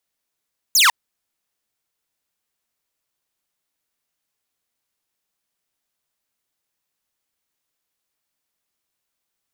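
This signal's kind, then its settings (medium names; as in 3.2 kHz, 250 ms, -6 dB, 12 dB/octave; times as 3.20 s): laser zap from 7.4 kHz, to 860 Hz, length 0.15 s saw, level -8 dB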